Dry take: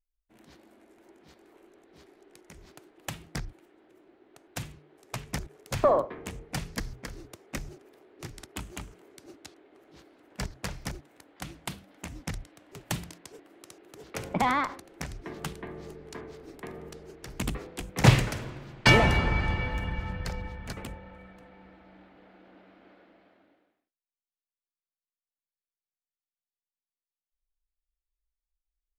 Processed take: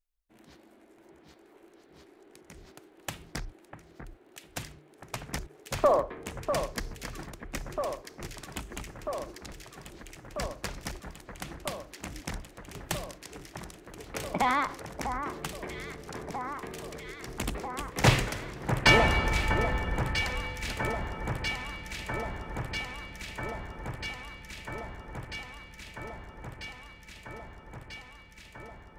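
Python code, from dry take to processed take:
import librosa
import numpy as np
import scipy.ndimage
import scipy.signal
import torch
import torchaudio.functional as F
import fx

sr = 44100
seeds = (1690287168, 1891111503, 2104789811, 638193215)

y = fx.dynamic_eq(x, sr, hz=140.0, q=0.76, threshold_db=-43.0, ratio=4.0, max_db=-6)
y = fx.echo_alternate(y, sr, ms=646, hz=1800.0, feedback_pct=87, wet_db=-7.5)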